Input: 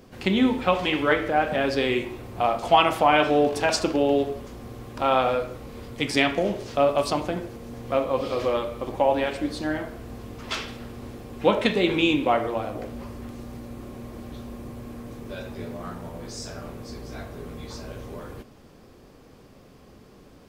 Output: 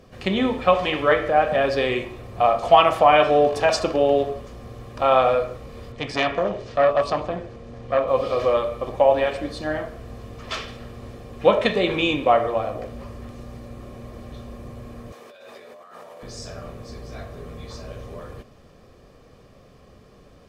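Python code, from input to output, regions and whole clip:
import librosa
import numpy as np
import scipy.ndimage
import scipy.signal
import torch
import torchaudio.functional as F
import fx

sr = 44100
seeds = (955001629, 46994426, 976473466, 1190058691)

y = fx.chain(x, sr, fx.air_absorb(metres=70.0),
    fx.transformer_sat(knee_hz=1600.0), at=(5.92, 8.08))
y = fx.chain(y, sr, fx.highpass(hz=550.0, slope=12),
    fx.over_compress(threshold_db=-45.0, ratio=-1.0), at=(15.12, 16.23))
y = fx.high_shelf(y, sr, hz=11000.0, db=-11.5)
y = y + 0.39 * np.pad(y, (int(1.7 * sr / 1000.0), 0))[:len(y)]
y = fx.dynamic_eq(y, sr, hz=810.0, q=0.74, threshold_db=-32.0, ratio=4.0, max_db=4)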